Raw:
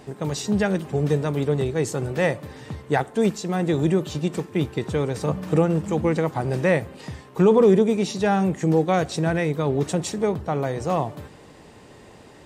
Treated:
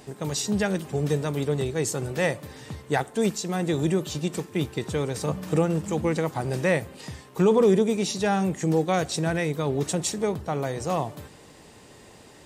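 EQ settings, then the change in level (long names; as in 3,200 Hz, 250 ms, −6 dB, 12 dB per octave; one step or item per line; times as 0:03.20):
high-shelf EQ 3,800 Hz +9.5 dB
−3.5 dB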